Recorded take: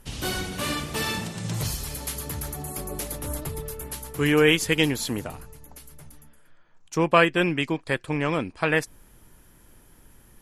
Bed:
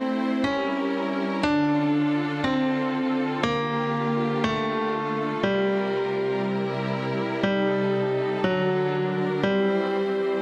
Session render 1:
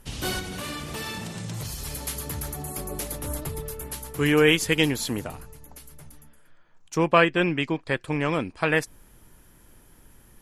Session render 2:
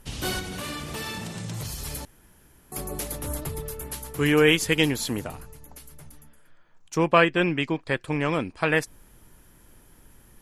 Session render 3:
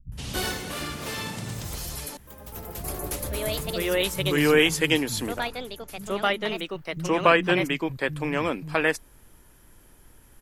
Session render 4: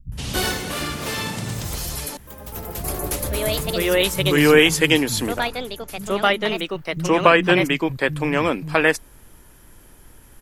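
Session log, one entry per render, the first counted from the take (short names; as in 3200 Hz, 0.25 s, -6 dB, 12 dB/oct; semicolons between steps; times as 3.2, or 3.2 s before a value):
0.39–1.85 compressor 4:1, threshold -30 dBFS; 7.11–8.01 air absorption 56 m
2.05–2.72 room tone
echoes that change speed 0.115 s, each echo +3 st, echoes 2, each echo -6 dB; bands offset in time lows, highs 0.12 s, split 180 Hz
gain +6 dB; limiter -1 dBFS, peak gain reduction 3 dB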